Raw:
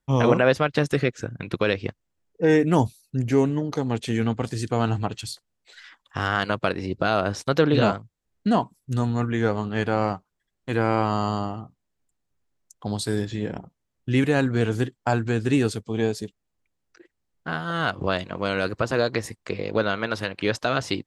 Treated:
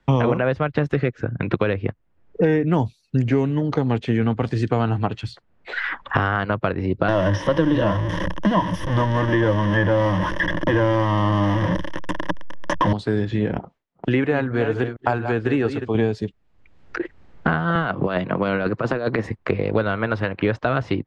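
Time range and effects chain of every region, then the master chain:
0:07.08–0:12.93: converter with a step at zero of −20.5 dBFS + EQ curve with evenly spaced ripples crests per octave 1.2, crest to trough 15 dB
0:13.59–0:15.95: delay that plays each chunk backwards 229 ms, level −10 dB + noise gate with hold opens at −42 dBFS, closes at −45 dBFS + bass and treble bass −13 dB, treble 0 dB
0:17.75–0:19.26: high-pass filter 140 Hz 24 dB per octave + compressor whose output falls as the input rises −26 dBFS, ratio −0.5
whole clip: low-pass filter 2,200 Hz 12 dB per octave; multiband upward and downward compressor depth 100%; level +1 dB

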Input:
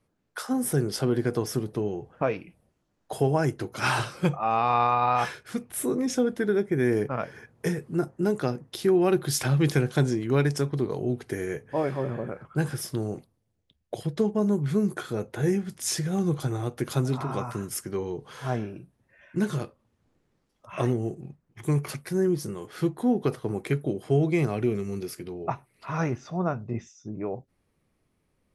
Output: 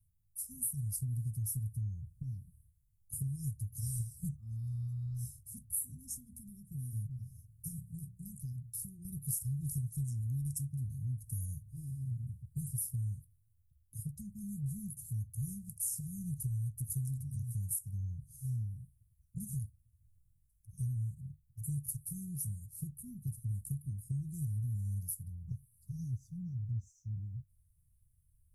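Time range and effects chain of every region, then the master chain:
0:05.98–0:09.05: mains-hum notches 60/120/180/240/300/360/420/480/540 Hz + downward compressor 1.5 to 1, threshold −31 dBFS
whole clip: inverse Chebyshev band-stop filter 410–2,900 Hz, stop band 70 dB; dynamic equaliser 150 Hz, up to −5 dB, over −50 dBFS, Q 3.7; downward compressor 10 to 1, threshold −40 dBFS; level +7.5 dB

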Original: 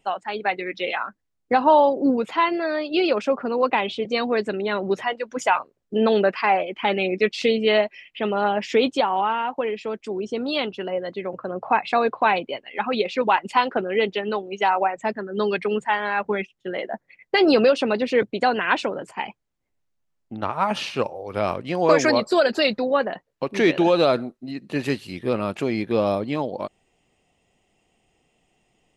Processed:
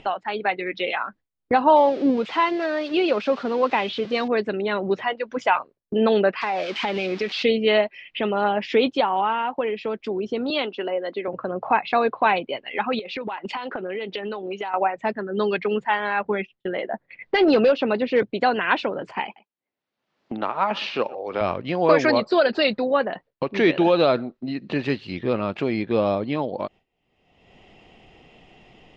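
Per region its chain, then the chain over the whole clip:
0:01.76–0:04.28: spike at every zero crossing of −21 dBFS + high-frequency loss of the air 100 metres
0:06.41–0:07.43: spike at every zero crossing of −15.5 dBFS + high-frequency loss of the air 98 metres + downward compressor 5 to 1, threshold −21 dBFS
0:10.50–0:11.28: high-pass filter 240 Hz 24 dB per octave + one half of a high-frequency compander decoder only
0:12.99–0:14.74: high-pass filter 160 Hz + downward compressor 12 to 1, threshold −31 dBFS
0:16.19–0:18.23: high-shelf EQ 5,800 Hz −9.5 dB + gain into a clipping stage and back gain 11 dB
0:19.24–0:21.41: high-pass filter 250 Hz + single-tap delay 121 ms −21.5 dB
whole clip: noise gate with hold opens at −42 dBFS; upward compression, threshold −22 dBFS; low-pass filter 4,500 Hz 24 dB per octave

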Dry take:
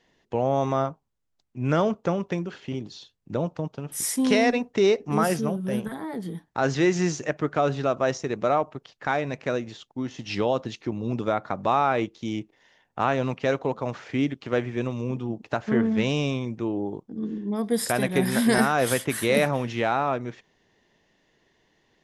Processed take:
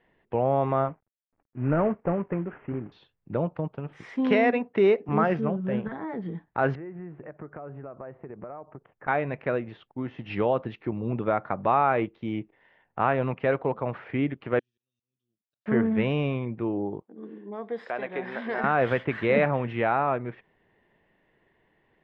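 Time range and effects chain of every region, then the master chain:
0:00.88–0:02.92: variable-slope delta modulation 16 kbit/s + low-pass filter 1,700 Hz + parametric band 280 Hz +4 dB 0.25 octaves
0:04.16–0:05.09: high-pass filter 150 Hz + bass and treble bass +2 dB, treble +4 dB
0:06.75–0:09.08: downward compressor, threshold −36 dBFS + Gaussian smoothing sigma 4.7 samples
0:14.59–0:15.66: inverse Chebyshev high-pass filter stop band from 2,300 Hz, stop band 50 dB + volume swells 371 ms
0:17.02–0:18.64: high-pass filter 430 Hz + parametric band 1,900 Hz −2.5 dB 1.9 octaves + downward compressor 1.5 to 1, threshold −32 dBFS
whole clip: low-pass filter 2,500 Hz 24 dB per octave; parametric band 260 Hz −3 dB 0.39 octaves

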